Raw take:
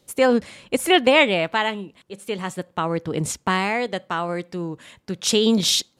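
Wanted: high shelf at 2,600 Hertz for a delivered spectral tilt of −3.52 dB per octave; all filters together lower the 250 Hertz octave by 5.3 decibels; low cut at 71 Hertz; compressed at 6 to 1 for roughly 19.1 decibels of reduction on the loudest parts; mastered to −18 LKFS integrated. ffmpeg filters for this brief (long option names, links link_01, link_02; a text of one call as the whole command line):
ffmpeg -i in.wav -af "highpass=71,equalizer=frequency=250:width_type=o:gain=-7,highshelf=frequency=2600:gain=8.5,acompressor=threshold=-31dB:ratio=6,volume=16dB" out.wav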